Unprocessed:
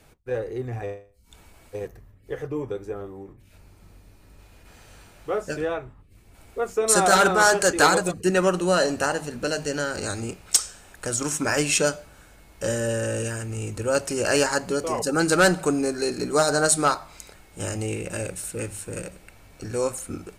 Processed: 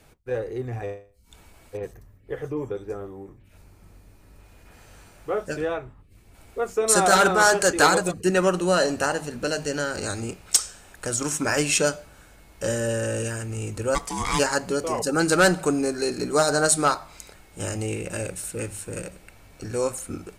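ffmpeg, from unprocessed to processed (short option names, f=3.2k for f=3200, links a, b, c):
-filter_complex "[0:a]asettb=1/sr,asplit=3[a][b][c];[a]atrim=end=1.774[d];[b]atrim=start=1.77:end=5.51,asetpts=PTS-STARTPTS,afade=t=in:d=0.004:c=qsin,afade=t=out:st=3.736:d=0.004:c=qsin,acrossover=split=3700[e][f];[f]adelay=60[g];[e][g]amix=inputs=2:normalize=0,atrim=end_sample=164934[h];[c]atrim=start=5.506[i];[d][h]acrossfade=d=0.004:c1=hsin:c2=qsin[j];[j][i]acrossfade=d=0.004:c1=qsin:c2=hsin,asplit=3[k][l][m];[k]afade=t=out:st=13.94:d=0.02[n];[l]aeval=exprs='val(0)*sin(2*PI*590*n/s)':c=same,afade=t=in:st=13.94:d=0.02,afade=t=out:st=14.38:d=0.02[o];[m]afade=t=in:st=14.38:d=0.02[p];[n][o][p]amix=inputs=3:normalize=0"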